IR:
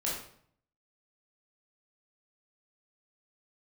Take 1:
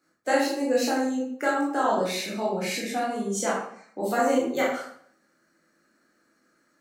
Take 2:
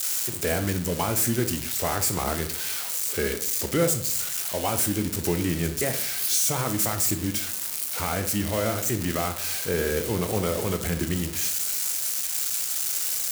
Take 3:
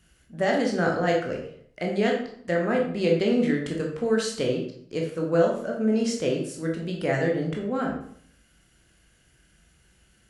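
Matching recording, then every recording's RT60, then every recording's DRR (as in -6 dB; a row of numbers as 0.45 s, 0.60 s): 1; 0.60 s, 0.60 s, 0.60 s; -6.0 dB, 7.0 dB, -0.5 dB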